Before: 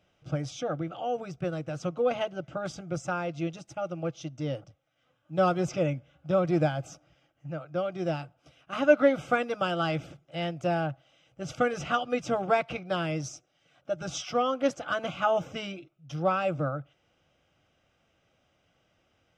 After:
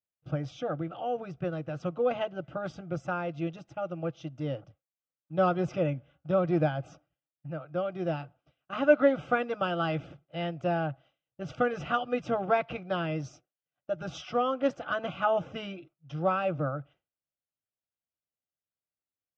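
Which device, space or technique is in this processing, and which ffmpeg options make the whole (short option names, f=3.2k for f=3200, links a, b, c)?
hearing-loss simulation: -af "lowpass=3.2k,agate=range=-33dB:threshold=-49dB:ratio=3:detection=peak,bandreject=f=2.2k:w=15,volume=-1dB"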